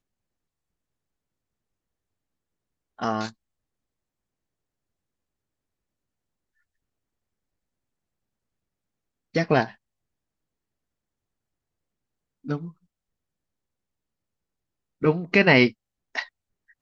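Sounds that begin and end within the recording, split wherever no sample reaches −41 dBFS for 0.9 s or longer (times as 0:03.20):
0:02.99–0:03.31
0:09.35–0:09.72
0:12.45–0:12.70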